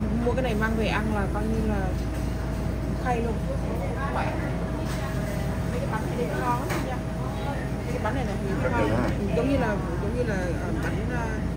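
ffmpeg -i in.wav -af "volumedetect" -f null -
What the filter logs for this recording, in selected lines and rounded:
mean_volume: -26.2 dB
max_volume: -11.8 dB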